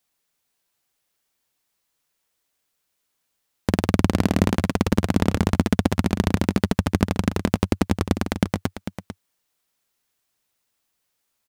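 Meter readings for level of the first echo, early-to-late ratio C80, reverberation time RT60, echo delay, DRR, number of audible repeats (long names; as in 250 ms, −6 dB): −10.5 dB, no reverb audible, no reverb audible, 447 ms, no reverb audible, 1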